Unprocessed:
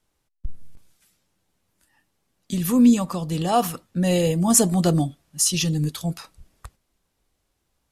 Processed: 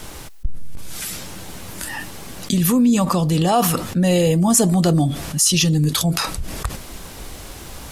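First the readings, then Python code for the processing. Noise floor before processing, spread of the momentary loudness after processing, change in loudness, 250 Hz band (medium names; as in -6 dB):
-74 dBFS, 21 LU, +3.0 dB, +3.0 dB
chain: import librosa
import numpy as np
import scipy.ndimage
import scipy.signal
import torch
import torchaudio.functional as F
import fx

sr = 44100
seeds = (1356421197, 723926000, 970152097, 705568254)

y = fx.env_flatten(x, sr, amount_pct=70)
y = y * 10.0 ** (-2.0 / 20.0)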